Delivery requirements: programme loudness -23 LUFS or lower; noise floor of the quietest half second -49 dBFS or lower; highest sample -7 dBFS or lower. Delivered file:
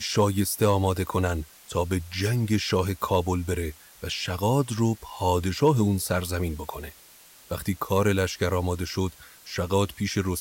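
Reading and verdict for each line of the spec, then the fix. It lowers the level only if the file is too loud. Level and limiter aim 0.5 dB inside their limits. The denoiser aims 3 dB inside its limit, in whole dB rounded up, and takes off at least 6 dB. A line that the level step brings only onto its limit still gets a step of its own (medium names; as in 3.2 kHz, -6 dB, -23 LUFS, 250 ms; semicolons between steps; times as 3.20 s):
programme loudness -26.0 LUFS: pass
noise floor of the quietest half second -52 dBFS: pass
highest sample -10.5 dBFS: pass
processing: none needed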